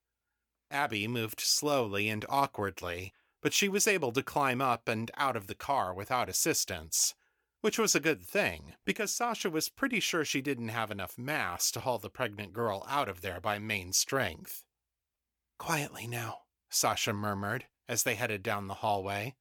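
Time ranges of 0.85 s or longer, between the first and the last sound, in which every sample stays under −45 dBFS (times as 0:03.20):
0:14.60–0:15.60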